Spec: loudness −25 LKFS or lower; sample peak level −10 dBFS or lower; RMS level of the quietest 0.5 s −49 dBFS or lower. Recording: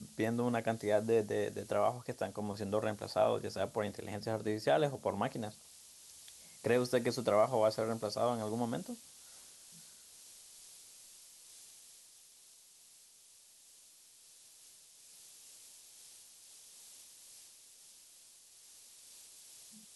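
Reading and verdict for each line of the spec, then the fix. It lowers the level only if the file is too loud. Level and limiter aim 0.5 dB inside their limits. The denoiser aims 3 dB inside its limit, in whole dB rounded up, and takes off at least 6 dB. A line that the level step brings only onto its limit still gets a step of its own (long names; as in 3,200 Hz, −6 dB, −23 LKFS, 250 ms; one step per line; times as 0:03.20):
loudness −34.5 LKFS: in spec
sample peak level −16.5 dBFS: in spec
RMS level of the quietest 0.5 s −62 dBFS: in spec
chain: no processing needed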